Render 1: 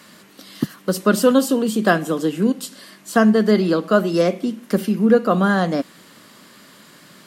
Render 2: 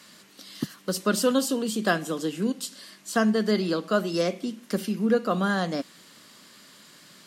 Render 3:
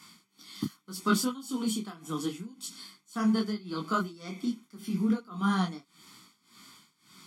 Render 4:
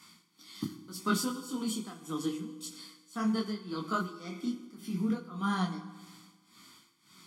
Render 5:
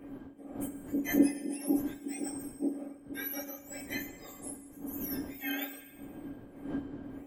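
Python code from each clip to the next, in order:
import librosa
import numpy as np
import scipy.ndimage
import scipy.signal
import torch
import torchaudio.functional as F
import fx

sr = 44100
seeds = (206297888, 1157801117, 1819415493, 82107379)

y1 = fx.peak_eq(x, sr, hz=5500.0, db=7.5, octaves=2.3)
y1 = y1 * librosa.db_to_amplitude(-8.5)
y2 = y1 + 0.9 * np.pad(y1, (int(0.9 * sr / 1000.0), 0))[:len(y1)]
y2 = y2 * (1.0 - 0.92 / 2.0 + 0.92 / 2.0 * np.cos(2.0 * np.pi * 1.8 * (np.arange(len(y2)) / sr)))
y2 = fx.detune_double(y2, sr, cents=27)
y3 = fx.rev_fdn(y2, sr, rt60_s=1.4, lf_ratio=1.0, hf_ratio=0.8, size_ms=18.0, drr_db=9.5)
y3 = y3 * librosa.db_to_amplitude(-3.0)
y4 = fx.octave_mirror(y3, sr, pivot_hz=1600.0)
y4 = fx.dmg_wind(y4, sr, seeds[0], corner_hz=390.0, level_db=-48.0)
y4 = fx.small_body(y4, sr, hz=(280.0, 1600.0, 3100.0), ring_ms=100, db=17)
y4 = y4 * librosa.db_to_amplitude(-3.5)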